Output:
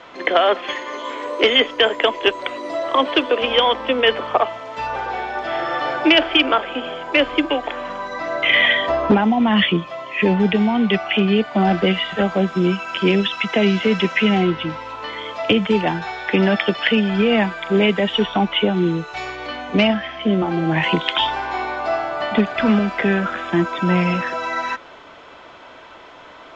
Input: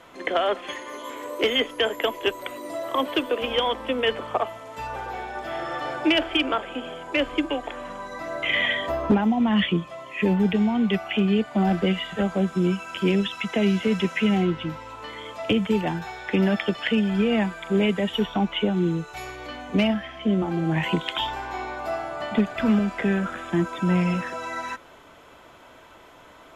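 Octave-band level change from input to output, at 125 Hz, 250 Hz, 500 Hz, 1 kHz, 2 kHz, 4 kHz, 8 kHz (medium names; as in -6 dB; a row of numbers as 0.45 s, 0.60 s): +3.0 dB, +4.0 dB, +6.5 dB, +8.0 dB, +8.5 dB, +8.5 dB, no reading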